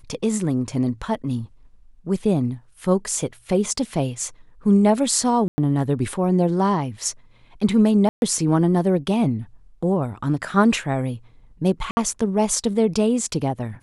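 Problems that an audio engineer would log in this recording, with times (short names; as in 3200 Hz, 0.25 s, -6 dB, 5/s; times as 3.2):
5.48–5.58 gap 0.1 s
8.09–8.22 gap 0.131 s
11.91–11.97 gap 60 ms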